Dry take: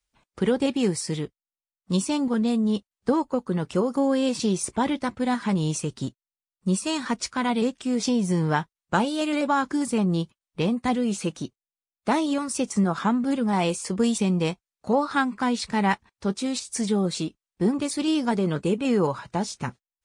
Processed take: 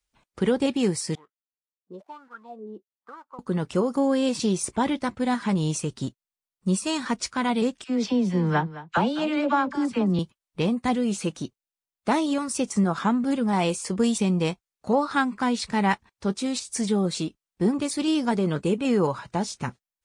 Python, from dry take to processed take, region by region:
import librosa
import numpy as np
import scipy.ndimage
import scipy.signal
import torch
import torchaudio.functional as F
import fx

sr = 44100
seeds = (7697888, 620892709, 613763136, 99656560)

y = fx.chain(x, sr, fx.dead_time(dead_ms=0.082),
    fx.wah_lfo(hz=1.1, low_hz=350.0, high_hz=1500.0, q=8.1),
    fx.high_shelf(hz=4900.0, db=6.0), at=(1.15, 3.39))
y = fx.chain(y, sr, fx.lowpass(hz=4000.0, slope=12),
    fx.dispersion(late='lows', ms=45.0, hz=800.0),
    fx.echo_single(ms=213, db=-16.0), at=(7.84, 10.19))